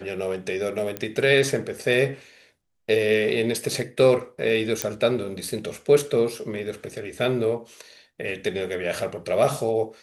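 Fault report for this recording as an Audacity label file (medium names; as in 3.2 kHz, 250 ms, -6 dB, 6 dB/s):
0.970000	0.970000	pop -13 dBFS
4.820000	4.820000	pop -6 dBFS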